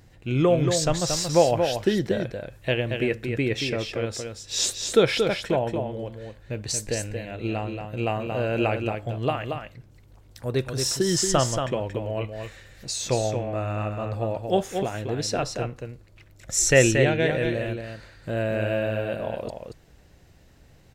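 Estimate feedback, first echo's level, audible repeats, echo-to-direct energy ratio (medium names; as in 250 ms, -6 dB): no regular repeats, -6.0 dB, 1, -6.0 dB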